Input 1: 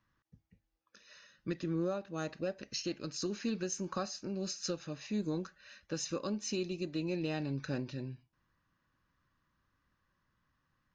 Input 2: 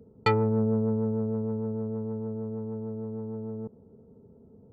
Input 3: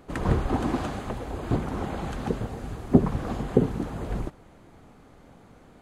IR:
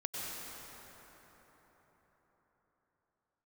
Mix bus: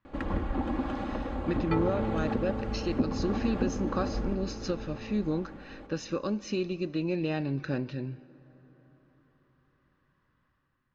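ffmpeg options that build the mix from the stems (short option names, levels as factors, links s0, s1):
-filter_complex "[0:a]dynaudnorm=f=110:g=9:m=2,volume=0.891,asplit=2[s0][s1];[s1]volume=0.0794[s2];[1:a]adelay=1450,volume=0.355[s3];[2:a]aecho=1:1:3.6:0.65,acompressor=threshold=0.0141:ratio=2,adelay=50,volume=0.891,asplit=2[s4][s5];[s5]volume=0.531[s6];[3:a]atrim=start_sample=2205[s7];[s2][s6]amix=inputs=2:normalize=0[s8];[s8][s7]afir=irnorm=-1:irlink=0[s9];[s0][s3][s4][s9]amix=inputs=4:normalize=0,lowpass=3300"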